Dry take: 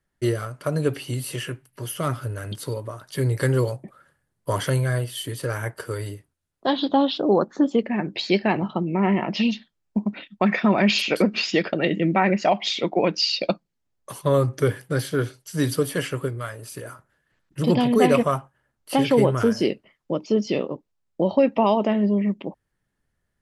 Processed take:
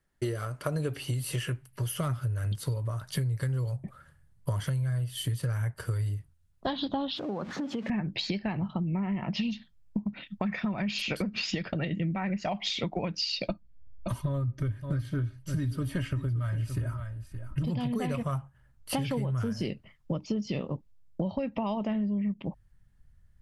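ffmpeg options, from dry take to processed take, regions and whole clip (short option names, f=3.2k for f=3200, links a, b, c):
-filter_complex "[0:a]asettb=1/sr,asplit=3[a][b][c];[a]atrim=end=7.164[d];[b]atrim=start=7.16:end=7.9,asetpts=PTS-STARTPTS,afade=t=in:d=0.004:c=qsin,afade=t=out:st=0.736:d=0.004:c=qsin,aeval=exprs='val(0)+0.5*0.0188*sgn(val(0))':c=same,acompressor=threshold=-27dB:ratio=6:attack=3.2:release=140:knee=1:detection=peak,highpass=180,lowpass=4.7k[e];[c]atrim=start=7.896[f];[d][e]acrossfade=d=0.004:c1=hsin:c2=qsin[g];[g][f]acrossfade=d=0.004:c1=qsin:c2=hsin,asettb=1/sr,asplit=3[h][i][j];[h]atrim=end=13.484[k];[i]atrim=start=13.48:end=17.65,asetpts=PTS-STARTPTS,afade=t=in:d=0.004:c=qsin,afade=t=out:st=4.166:d=0.004:c=qsin,bass=f=250:g=8,treble=f=4k:g=-9,aecho=1:1:3.2:0.64,atrim=end_sample=183897,aecho=1:1:570:0.158,atrim=end_sample=183897[l];[j]atrim=start=17.646[m];[k][l]acrossfade=d=0.004:c1=hsin:c2=qsin[n];[n][m]acrossfade=d=0.004:c1=qsin:c2=hsin,asubboost=boost=10.5:cutoff=110,alimiter=limit=-12dB:level=0:latency=1:release=361,acompressor=threshold=-28dB:ratio=6"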